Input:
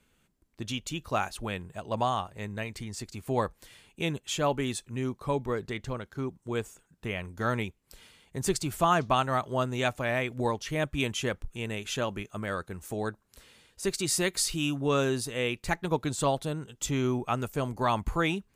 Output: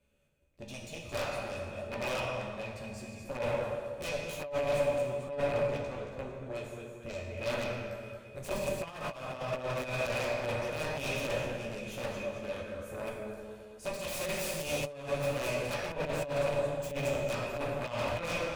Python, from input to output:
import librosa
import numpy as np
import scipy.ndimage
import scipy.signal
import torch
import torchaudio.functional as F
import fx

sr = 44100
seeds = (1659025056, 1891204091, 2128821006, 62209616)

y = fx.doubler(x, sr, ms=14.0, db=-3.0)
y = fx.echo_feedback(y, sr, ms=223, feedback_pct=50, wet_db=-8.5)
y = fx.cheby_harmonics(y, sr, harmonics=(4, 7), levels_db=(-23, -14), full_scale_db=-9.5)
y = fx.low_shelf(y, sr, hz=230.0, db=7.5)
y = fx.rev_plate(y, sr, seeds[0], rt60_s=1.6, hf_ratio=0.75, predelay_ms=0, drr_db=0.0)
y = fx.over_compress(y, sr, threshold_db=-27.0, ratio=-0.5)
y = 10.0 ** (-23.0 / 20.0) * (np.abs((y / 10.0 ** (-23.0 / 20.0) + 3.0) % 4.0 - 2.0) - 1.0)
y = fx.small_body(y, sr, hz=(570.0, 2500.0), ring_ms=45, db=16)
y = y * librosa.db_to_amplitude(-8.0)